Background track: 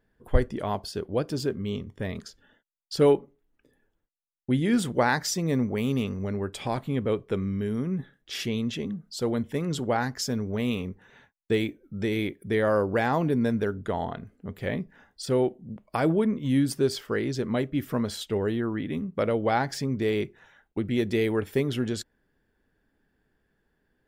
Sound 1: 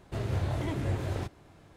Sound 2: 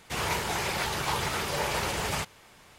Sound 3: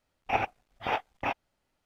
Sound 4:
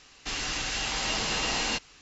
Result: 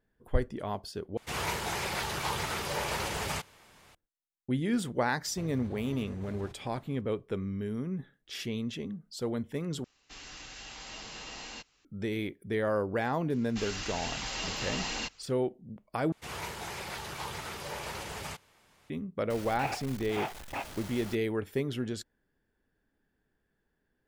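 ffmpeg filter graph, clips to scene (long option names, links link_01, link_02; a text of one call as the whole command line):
ffmpeg -i bed.wav -i cue0.wav -i cue1.wav -i cue2.wav -i cue3.wav -filter_complex "[2:a]asplit=2[link_01][link_02];[4:a]asplit=2[link_03][link_04];[0:a]volume=-6dB[link_05];[1:a]acompressor=threshold=-36dB:ratio=6:attack=3.2:release=140:knee=1:detection=peak[link_06];[link_04]aphaser=in_gain=1:out_gain=1:delay=3.9:decay=0.27:speed=1.2:type=triangular[link_07];[3:a]aeval=exprs='val(0)+0.5*0.0299*sgn(val(0))':channel_layout=same[link_08];[link_05]asplit=4[link_09][link_10][link_11][link_12];[link_09]atrim=end=1.174[link_13];[link_01]atrim=end=2.78,asetpts=PTS-STARTPTS,volume=-3.5dB[link_14];[link_10]atrim=start=3.946:end=9.844[link_15];[link_03]atrim=end=2.01,asetpts=PTS-STARTPTS,volume=-15dB[link_16];[link_11]atrim=start=11.846:end=16.124[link_17];[link_02]atrim=end=2.78,asetpts=PTS-STARTPTS,volume=-9.5dB[link_18];[link_12]atrim=start=18.896[link_19];[link_06]atrim=end=1.76,asetpts=PTS-STARTPTS,volume=-5.5dB,afade=type=in:duration=0.004:curve=hsin,afade=type=out:start_time=1.756:duration=0.004:curve=hsin,adelay=231525S[link_20];[link_07]atrim=end=2.01,asetpts=PTS-STARTPTS,volume=-7dB,afade=type=in:duration=0.004:curve=hsin,afade=type=out:start_time=2.006:duration=0.004:curve=hsin,adelay=13300[link_21];[link_08]atrim=end=1.85,asetpts=PTS-STARTPTS,volume=-8.5dB,afade=type=in:duration=0.004:curve=hsin,afade=type=out:start_time=1.846:duration=0.004:curve=hsin,adelay=19300[link_22];[link_13][link_14]acrossfade=duration=0.004:curve1=hsin:curve2=hsin[link_23];[link_23][link_15]acrossfade=duration=0.004:curve1=hsin:curve2=hsin[link_24];[link_24][link_16]acrossfade=duration=0.004:curve1=hsin:curve2=hsin[link_25];[link_25][link_17]acrossfade=duration=0.004:curve1=hsin:curve2=hsin[link_26];[link_26][link_18]acrossfade=duration=0.004:curve1=hsin:curve2=hsin[link_27];[link_27][link_19]acrossfade=duration=0.004:curve1=hsin:curve2=hsin[link_28];[link_28][link_20][link_21][link_22]amix=inputs=4:normalize=0" out.wav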